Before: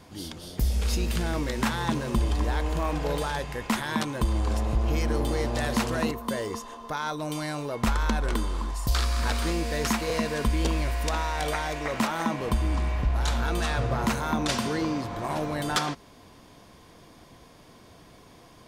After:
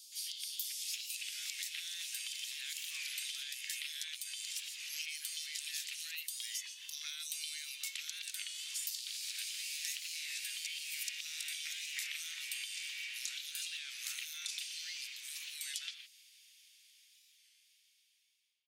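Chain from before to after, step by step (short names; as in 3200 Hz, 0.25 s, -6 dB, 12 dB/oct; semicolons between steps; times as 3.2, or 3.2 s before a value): ending faded out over 5.98 s; steep high-pass 2500 Hz 36 dB/oct; compressor 12:1, threshold -45 dBFS, peak gain reduction 17.5 dB; bands offset in time highs, lows 0.12 s, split 4000 Hz; record warp 33 1/3 rpm, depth 100 cents; gain +9 dB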